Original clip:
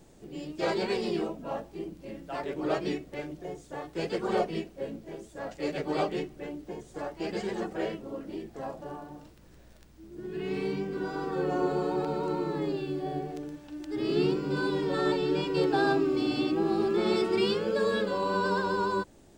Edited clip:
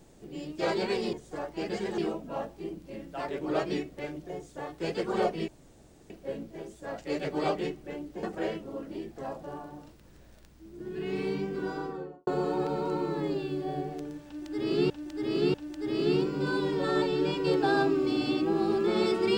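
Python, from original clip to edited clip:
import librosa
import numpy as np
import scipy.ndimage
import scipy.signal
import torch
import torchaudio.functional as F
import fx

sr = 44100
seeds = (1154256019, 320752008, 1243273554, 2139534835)

y = fx.studio_fade_out(x, sr, start_s=11.05, length_s=0.6)
y = fx.edit(y, sr, fx.insert_room_tone(at_s=4.63, length_s=0.62),
    fx.move(start_s=6.76, length_s=0.85, to_s=1.13),
    fx.repeat(start_s=13.64, length_s=0.64, count=3), tone=tone)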